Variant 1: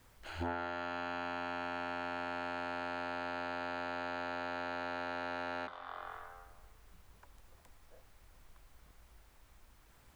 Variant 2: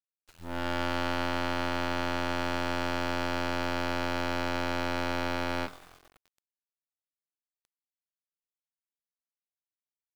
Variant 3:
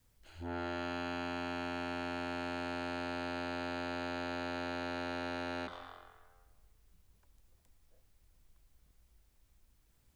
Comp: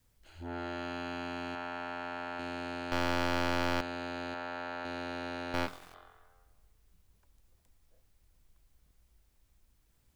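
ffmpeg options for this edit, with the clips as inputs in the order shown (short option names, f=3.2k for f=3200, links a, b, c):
-filter_complex "[0:a]asplit=2[a][b];[1:a]asplit=2[c][d];[2:a]asplit=5[e][f][g][h][i];[e]atrim=end=1.552[j];[a]atrim=start=1.548:end=2.392[k];[f]atrim=start=2.388:end=2.922[l];[c]atrim=start=2.918:end=3.812[m];[g]atrim=start=3.808:end=4.342[n];[b]atrim=start=4.338:end=4.852[o];[h]atrim=start=4.848:end=5.542[p];[d]atrim=start=5.538:end=5.942[q];[i]atrim=start=5.938[r];[j][k]acrossfade=d=0.004:c1=hsin:c2=hsin[s];[s][l]acrossfade=d=0.004:c1=hsin:c2=hsin[t];[t][m]acrossfade=d=0.004:c1=hsin:c2=hsin[u];[u][n]acrossfade=d=0.004:c1=hsin:c2=hsin[v];[v][o]acrossfade=d=0.004:c1=hsin:c2=hsin[w];[w][p]acrossfade=d=0.004:c1=hsin:c2=hsin[x];[x][q]acrossfade=d=0.004:c1=hsin:c2=hsin[y];[y][r]acrossfade=d=0.004:c1=hsin:c2=hsin"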